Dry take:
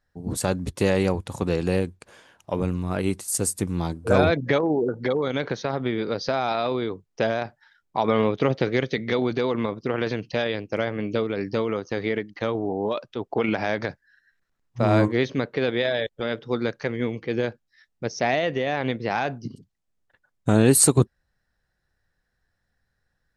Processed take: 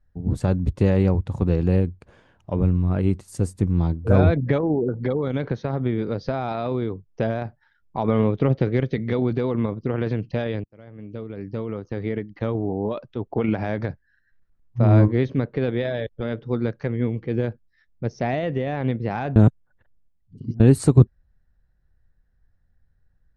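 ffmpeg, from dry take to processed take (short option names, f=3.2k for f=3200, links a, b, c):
-filter_complex "[0:a]asplit=4[a][b][c][d];[a]atrim=end=10.64,asetpts=PTS-STARTPTS,afade=t=out:st=10.636:d=0.004:c=hsin[e];[b]atrim=start=10.64:end=19.362,asetpts=PTS-STARTPTS,afade=t=in:d=1.8[f];[c]atrim=start=19.358:end=20.602,asetpts=PTS-STARTPTS,areverse[g];[d]atrim=start=20.598[h];[e][f]concat=n=2:v=0:a=1[i];[i][g]acrossfade=d=0.004:c1=hsin:c2=hsin[j];[j][h]acrossfade=d=0.004:c1=hsin:c2=hsin,aemphasis=mode=reproduction:type=riaa,volume=-4dB"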